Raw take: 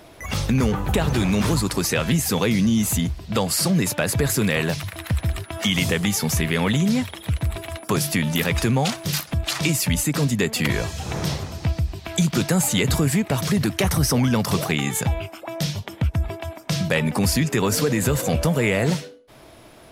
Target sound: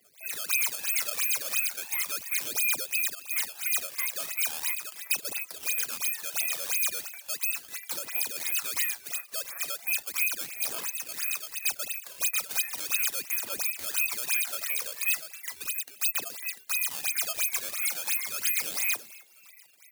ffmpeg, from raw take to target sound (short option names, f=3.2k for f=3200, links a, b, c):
-filter_complex "[0:a]lowpass=f=2.5k:t=q:w=0.5098,lowpass=f=2.5k:t=q:w=0.6013,lowpass=f=2.5k:t=q:w=0.9,lowpass=f=2.5k:t=q:w=2.563,afreqshift=-2900,aresample=8000,asoftclip=type=tanh:threshold=-19.5dB,aresample=44100,afreqshift=-250,afftfilt=real='re*gte(hypot(re,im),0.0141)':imag='im*gte(hypot(re,im),0.0141)':win_size=1024:overlap=0.75,acrusher=samples=13:mix=1:aa=0.000001:lfo=1:lforange=20.8:lforate=2.9,aphaser=in_gain=1:out_gain=1:delay=1.9:decay=0.46:speed=0.37:type=triangular,aderivative,asplit=4[a][b][c][d];[b]adelay=269,afreqshift=93,volume=-23.5dB[e];[c]adelay=538,afreqshift=186,volume=-30.4dB[f];[d]adelay=807,afreqshift=279,volume=-37.4dB[g];[a][e][f][g]amix=inputs=4:normalize=0"